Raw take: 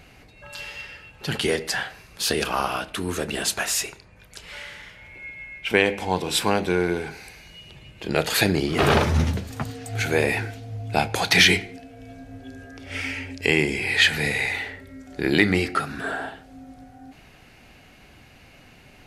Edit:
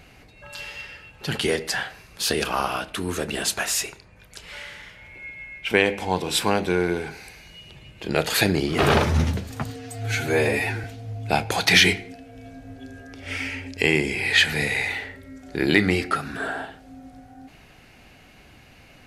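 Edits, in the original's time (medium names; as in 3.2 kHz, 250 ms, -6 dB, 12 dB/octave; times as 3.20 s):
9.76–10.48 s: stretch 1.5×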